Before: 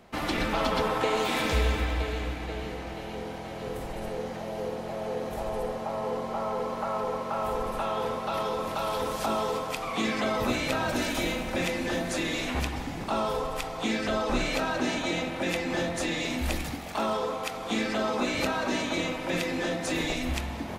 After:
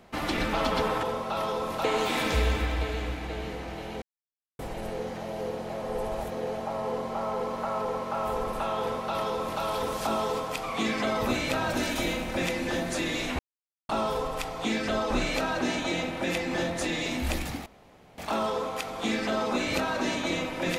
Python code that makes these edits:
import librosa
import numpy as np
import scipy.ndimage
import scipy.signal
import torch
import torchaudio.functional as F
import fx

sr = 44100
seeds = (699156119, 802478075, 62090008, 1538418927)

y = fx.edit(x, sr, fx.silence(start_s=3.21, length_s=0.57),
    fx.reverse_span(start_s=5.01, length_s=0.78),
    fx.duplicate(start_s=8.0, length_s=0.81, to_s=1.03),
    fx.silence(start_s=12.58, length_s=0.5),
    fx.insert_room_tone(at_s=16.85, length_s=0.52), tone=tone)